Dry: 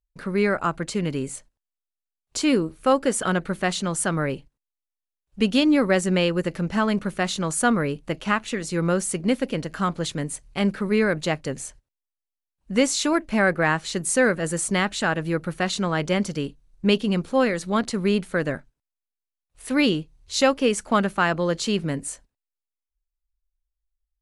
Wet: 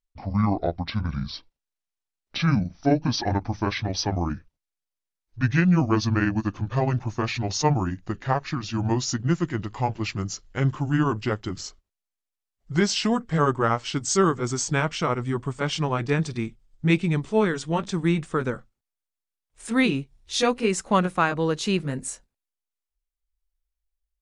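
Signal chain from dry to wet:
pitch glide at a constant tempo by −12 semitones ending unshifted

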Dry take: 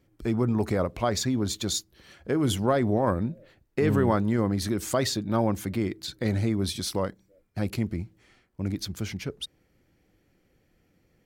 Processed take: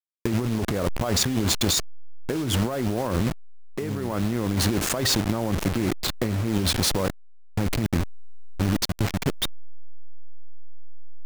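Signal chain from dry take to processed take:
hold until the input has moved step −29 dBFS
compressor whose output falls as the input rises −30 dBFS, ratio −1
level +6.5 dB

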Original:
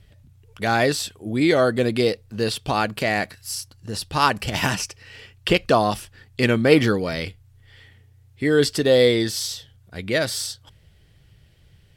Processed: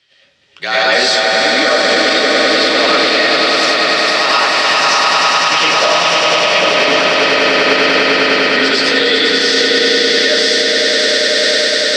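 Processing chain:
high-pass filter 150 Hz 24 dB per octave
low-shelf EQ 210 Hz −4 dB
echo that builds up and dies away 100 ms, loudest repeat 8, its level −5.5 dB
comb and all-pass reverb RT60 0.57 s, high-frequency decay 0.45×, pre-delay 65 ms, DRR −8.5 dB
flanger 1.1 Hz, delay 5 ms, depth 8 ms, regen −65%
frequency shifter −39 Hz
spectral tilt +4.5 dB per octave
automatic gain control
low-pass filter 5,000 Hz 24 dB per octave
boost into a limiter +6 dB
level −1 dB

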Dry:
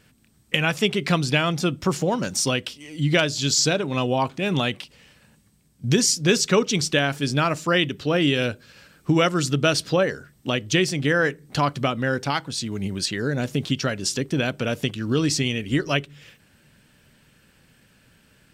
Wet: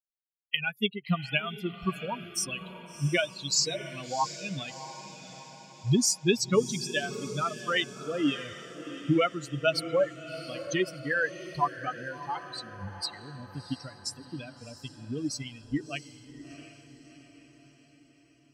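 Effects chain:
spectral dynamics exaggerated over time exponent 3
feedback delay with all-pass diffusion 687 ms, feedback 52%, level −12.5 dB

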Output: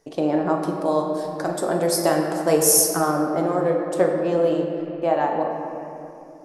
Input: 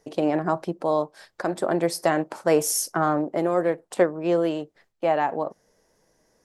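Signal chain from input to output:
0:00.55–0:03.00: high-shelf EQ 5,700 Hz +11 dB
convolution reverb RT60 2.7 s, pre-delay 7 ms, DRR 1.5 dB
dynamic equaliser 2,200 Hz, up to −5 dB, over −43 dBFS, Q 1.6

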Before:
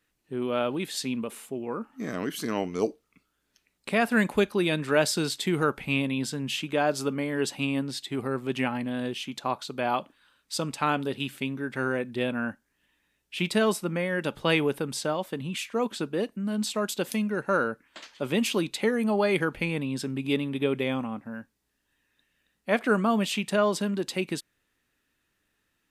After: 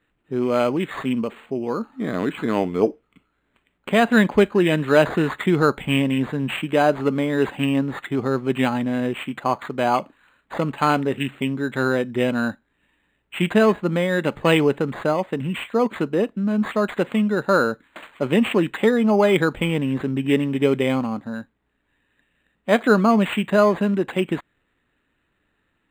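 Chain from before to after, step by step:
Butterworth low-pass 4,500 Hz 36 dB per octave
linearly interpolated sample-rate reduction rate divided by 8×
level +8 dB

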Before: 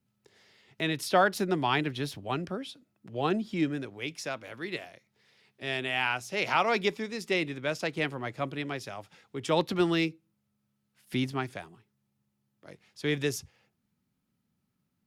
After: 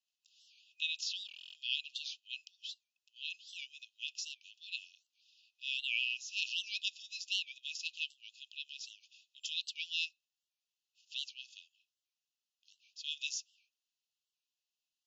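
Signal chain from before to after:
brick-wall band-pass 2,500–7,300 Hz
buffer that repeats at 0:01.27, samples 1,024, times 11
wow of a warped record 78 rpm, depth 160 cents

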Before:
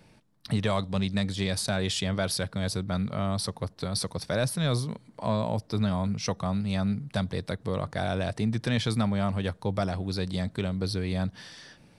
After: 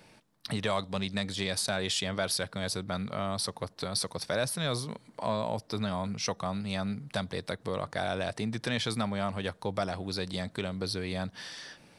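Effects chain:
low-shelf EQ 240 Hz −11 dB
in parallel at −0.5 dB: downward compressor, threshold −39 dBFS, peak gain reduction 14 dB
on the sum: level −2 dB

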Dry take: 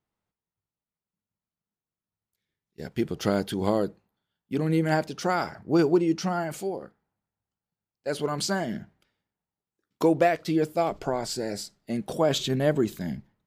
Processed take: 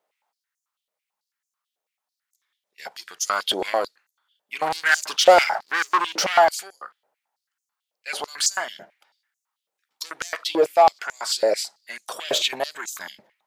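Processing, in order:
soft clipping −19.5 dBFS, distortion −13 dB
0:04.62–0:06.49: leveller curve on the samples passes 2
high-pass on a step sequencer 9.1 Hz 570–6,500 Hz
level +7 dB

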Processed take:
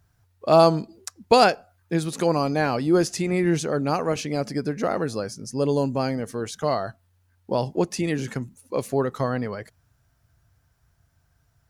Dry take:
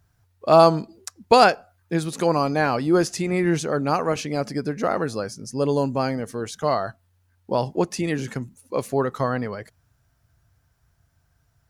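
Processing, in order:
dynamic equaliser 1,200 Hz, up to −4 dB, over −32 dBFS, Q 0.91

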